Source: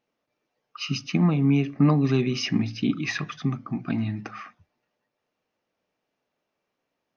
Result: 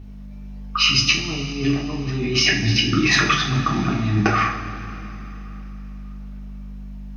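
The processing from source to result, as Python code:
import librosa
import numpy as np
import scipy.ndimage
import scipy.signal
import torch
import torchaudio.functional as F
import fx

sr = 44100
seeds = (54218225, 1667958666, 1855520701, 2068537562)

y = fx.over_compress(x, sr, threshold_db=-33.0, ratio=-1.0)
y = fx.dmg_buzz(y, sr, base_hz=50.0, harmonics=5, level_db=-46.0, tilt_db=-7, odd_only=False)
y = fx.rev_double_slope(y, sr, seeds[0], early_s=0.38, late_s=3.4, knee_db=-16, drr_db=-3.0)
y = F.gain(torch.from_numpy(y), 8.0).numpy()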